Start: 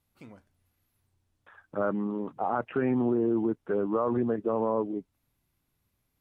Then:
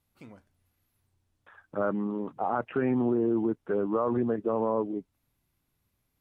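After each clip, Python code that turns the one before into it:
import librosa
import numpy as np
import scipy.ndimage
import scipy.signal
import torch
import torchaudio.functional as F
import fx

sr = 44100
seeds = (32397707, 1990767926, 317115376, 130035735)

y = x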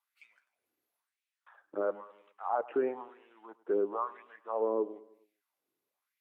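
y = fx.filter_lfo_highpass(x, sr, shape='sine', hz=1.0, low_hz=340.0, high_hz=2400.0, q=3.3)
y = fx.echo_feedback(y, sr, ms=104, feedback_pct=49, wet_db=-20)
y = y * 10.0 ** (-8.5 / 20.0)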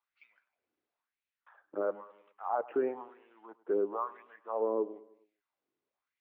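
y = fx.air_absorb(x, sr, metres=200.0)
y = np.interp(np.arange(len(y)), np.arange(len(y))[::2], y[::2])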